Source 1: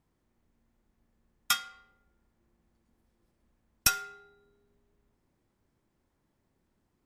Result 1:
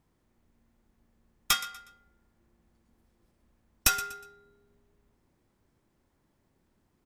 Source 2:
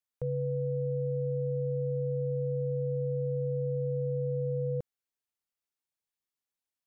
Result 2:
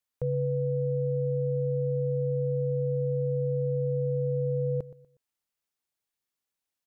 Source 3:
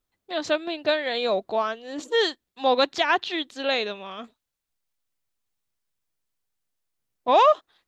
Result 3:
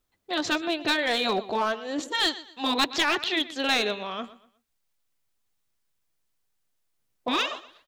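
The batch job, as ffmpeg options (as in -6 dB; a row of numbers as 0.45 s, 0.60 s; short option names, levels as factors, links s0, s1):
-af "afftfilt=real='re*lt(hypot(re,im),0.447)':imag='im*lt(hypot(re,im),0.447)':win_size=1024:overlap=0.75,aecho=1:1:121|242|363:0.141|0.0438|0.0136,aeval=exprs='clip(val(0),-1,0.0708)':c=same,volume=1.5"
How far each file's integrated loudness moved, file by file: +1.0 LU, +3.5 LU, -2.0 LU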